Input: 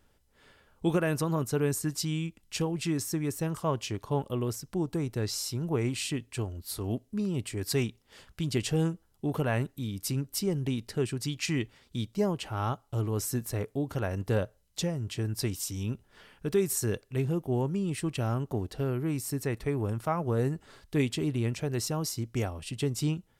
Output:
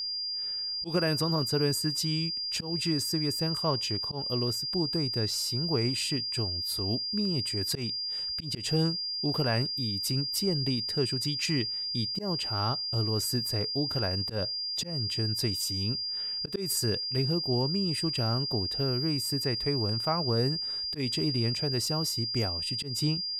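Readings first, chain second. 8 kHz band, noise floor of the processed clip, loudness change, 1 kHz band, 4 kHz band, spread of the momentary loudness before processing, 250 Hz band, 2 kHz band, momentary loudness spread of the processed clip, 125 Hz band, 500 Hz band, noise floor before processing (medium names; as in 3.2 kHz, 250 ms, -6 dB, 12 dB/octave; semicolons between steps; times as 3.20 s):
0.0 dB, -34 dBFS, +3.0 dB, -0.5 dB, +13.5 dB, 6 LU, -1.0 dB, -0.5 dB, 4 LU, -0.5 dB, -1.5 dB, -68 dBFS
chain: whistle 4.8 kHz -31 dBFS; slow attack 136 ms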